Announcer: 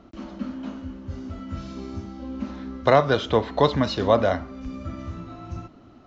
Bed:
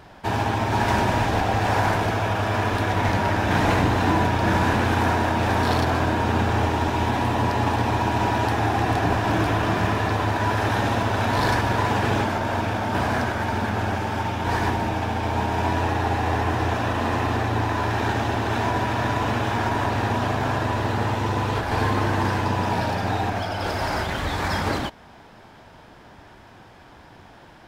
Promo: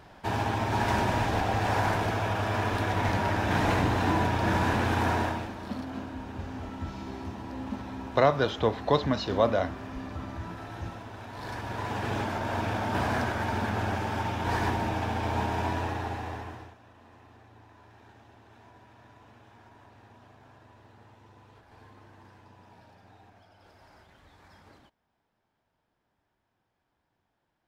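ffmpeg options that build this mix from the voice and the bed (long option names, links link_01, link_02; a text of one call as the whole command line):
ffmpeg -i stem1.wav -i stem2.wav -filter_complex "[0:a]adelay=5300,volume=-5dB[link_01];[1:a]volume=10dB,afade=type=out:start_time=5.21:duration=0.29:silence=0.177828,afade=type=in:start_time=11.34:duration=1.4:silence=0.16788,afade=type=out:start_time=15.41:duration=1.34:silence=0.0473151[link_02];[link_01][link_02]amix=inputs=2:normalize=0" out.wav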